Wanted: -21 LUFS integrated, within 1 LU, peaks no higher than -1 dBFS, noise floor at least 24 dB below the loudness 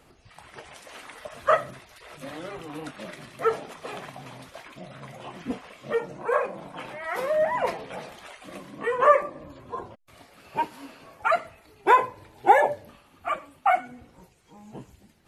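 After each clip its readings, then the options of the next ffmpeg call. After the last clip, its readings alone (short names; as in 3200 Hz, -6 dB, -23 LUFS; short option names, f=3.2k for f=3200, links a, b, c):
loudness -26.0 LUFS; peak -4.5 dBFS; loudness target -21.0 LUFS
-> -af "volume=5dB,alimiter=limit=-1dB:level=0:latency=1"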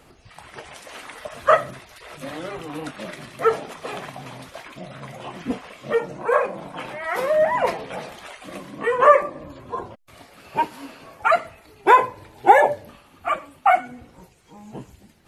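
loudness -21.5 LUFS; peak -1.0 dBFS; noise floor -53 dBFS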